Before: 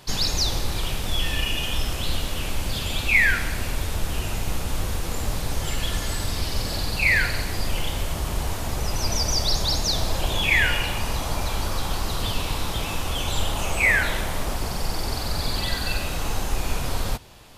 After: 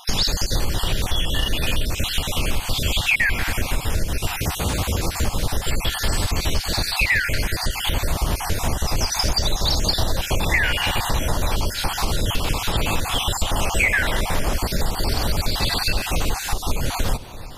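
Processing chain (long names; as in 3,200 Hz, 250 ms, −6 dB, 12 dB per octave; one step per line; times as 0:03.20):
time-frequency cells dropped at random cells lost 33%
0:04.39–0:05.03: high-pass filter 61 Hz
downward compressor, threshold −25 dBFS, peak gain reduction 9.5 dB
delay with a low-pass on its return 341 ms, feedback 36%, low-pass 950 Hz, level −16 dB
level +9 dB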